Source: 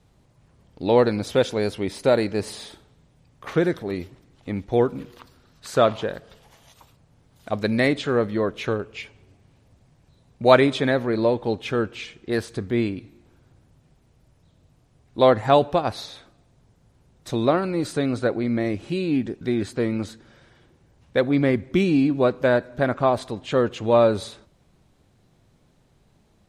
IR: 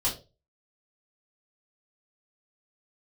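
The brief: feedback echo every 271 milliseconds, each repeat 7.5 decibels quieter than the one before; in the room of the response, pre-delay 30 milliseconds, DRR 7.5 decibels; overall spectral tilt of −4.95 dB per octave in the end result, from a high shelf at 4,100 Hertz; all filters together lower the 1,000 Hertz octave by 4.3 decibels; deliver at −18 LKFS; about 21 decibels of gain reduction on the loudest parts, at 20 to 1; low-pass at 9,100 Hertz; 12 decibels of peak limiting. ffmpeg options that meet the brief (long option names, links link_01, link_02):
-filter_complex "[0:a]lowpass=9100,equalizer=frequency=1000:width_type=o:gain=-6.5,highshelf=frequency=4100:gain=3.5,acompressor=threshold=-33dB:ratio=20,alimiter=level_in=9.5dB:limit=-24dB:level=0:latency=1,volume=-9.5dB,aecho=1:1:271|542|813|1084|1355:0.422|0.177|0.0744|0.0312|0.0131,asplit=2[link_01][link_02];[1:a]atrim=start_sample=2205,adelay=30[link_03];[link_02][link_03]afir=irnorm=-1:irlink=0,volume=-15dB[link_04];[link_01][link_04]amix=inputs=2:normalize=0,volume=24dB"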